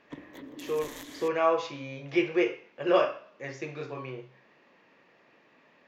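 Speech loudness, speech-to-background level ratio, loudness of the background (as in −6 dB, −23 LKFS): −30.0 LKFS, 14.5 dB, −44.5 LKFS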